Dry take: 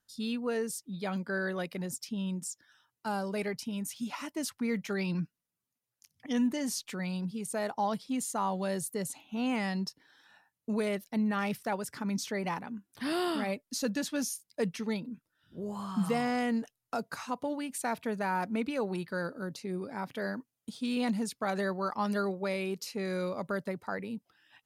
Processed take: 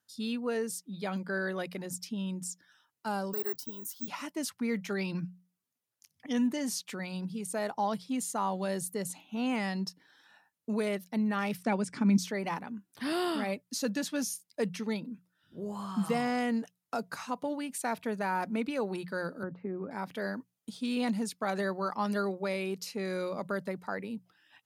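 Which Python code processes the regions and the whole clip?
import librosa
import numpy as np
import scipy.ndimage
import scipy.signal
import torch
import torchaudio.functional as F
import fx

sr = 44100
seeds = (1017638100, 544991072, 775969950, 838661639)

y = fx.chain(x, sr, fx.high_shelf(hz=10000.0, db=-5.0),
    fx.fixed_phaser(hz=650.0, stages=6),
    fx.resample_bad(factor=2, down='none', up='zero_stuff'), at=(3.33, 4.08))
y = fx.chain(y, sr, fx.steep_lowpass(hz=9700.0, slope=36),
    fx.small_body(hz=(220.0, 2300.0), ring_ms=20, db=10), at=(11.63, 12.18))
y = fx.chain(y, sr, fx.lowpass(hz=1700.0, slope=24),
    fx.band_squash(depth_pct=70), at=(19.43, 19.91))
y = scipy.signal.sosfilt(scipy.signal.butter(2, 91.0, 'highpass', fs=sr, output='sos'), y)
y = fx.hum_notches(y, sr, base_hz=60, count=3)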